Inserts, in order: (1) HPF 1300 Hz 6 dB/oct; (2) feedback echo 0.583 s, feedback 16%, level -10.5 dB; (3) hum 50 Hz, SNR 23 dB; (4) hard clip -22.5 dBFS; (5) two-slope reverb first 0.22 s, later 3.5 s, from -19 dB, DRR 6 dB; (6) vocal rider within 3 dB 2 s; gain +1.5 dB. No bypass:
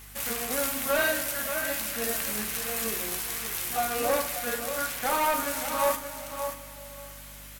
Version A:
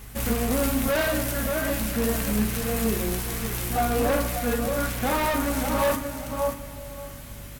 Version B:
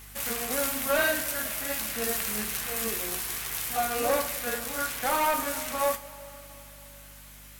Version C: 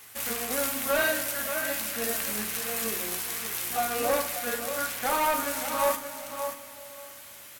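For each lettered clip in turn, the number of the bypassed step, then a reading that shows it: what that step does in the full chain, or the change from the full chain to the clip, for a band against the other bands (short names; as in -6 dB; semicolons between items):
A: 1, 125 Hz band +16.5 dB; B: 2, momentary loudness spread change +9 LU; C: 3, 125 Hz band -2.5 dB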